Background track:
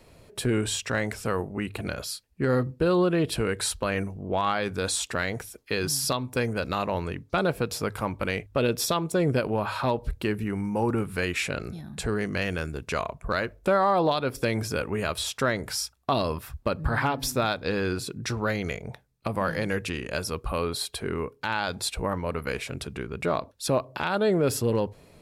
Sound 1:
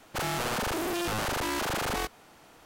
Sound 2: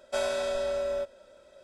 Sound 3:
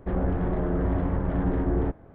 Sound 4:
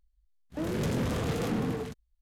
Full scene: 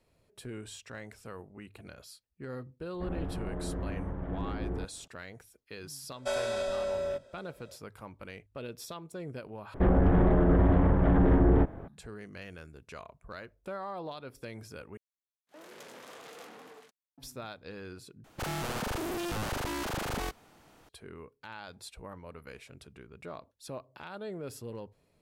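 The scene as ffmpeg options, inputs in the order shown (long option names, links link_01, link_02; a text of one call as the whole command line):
ffmpeg -i bed.wav -i cue0.wav -i cue1.wav -i cue2.wav -i cue3.wav -filter_complex "[3:a]asplit=2[link_01][link_02];[0:a]volume=-17dB[link_03];[link_02]alimiter=level_in=20.5dB:limit=-1dB:release=50:level=0:latency=1[link_04];[4:a]highpass=610[link_05];[1:a]lowshelf=frequency=290:gain=7[link_06];[link_03]asplit=4[link_07][link_08][link_09][link_10];[link_07]atrim=end=9.744[link_11];[link_04]atrim=end=2.14,asetpts=PTS-STARTPTS,volume=-14dB[link_12];[link_08]atrim=start=11.876:end=14.974[link_13];[link_05]atrim=end=2.21,asetpts=PTS-STARTPTS,volume=-11dB[link_14];[link_09]atrim=start=17.176:end=18.244[link_15];[link_06]atrim=end=2.65,asetpts=PTS-STARTPTS,volume=-6dB[link_16];[link_10]atrim=start=20.886[link_17];[link_01]atrim=end=2.14,asetpts=PTS-STARTPTS,volume=-10.5dB,afade=type=in:duration=0.004:curve=hsin,afade=type=out:start_time=2.136:duration=0.004:curve=hsin,adelay=2940[link_18];[2:a]atrim=end=1.63,asetpts=PTS-STARTPTS,volume=-2.5dB,afade=type=in:duration=0.004:curve=hsin,afade=type=out:start_time=1.626:duration=0.004:curve=hsin,adelay=6130[link_19];[link_11][link_12]acrossfade=duration=0.004:curve1=hsin:curve2=hsin[link_20];[link_20][link_13]acrossfade=duration=0.004:curve1=hsin:curve2=hsin[link_21];[link_21][link_14]acrossfade=duration=0.004:curve1=hsin:curve2=hsin[link_22];[link_22][link_15]acrossfade=duration=0.004:curve1=hsin:curve2=hsin[link_23];[link_23][link_16]acrossfade=duration=0.004:curve1=hsin:curve2=hsin[link_24];[link_24][link_17]acrossfade=duration=0.004:curve1=hsin:curve2=hsin[link_25];[link_25][link_18][link_19]amix=inputs=3:normalize=0" out.wav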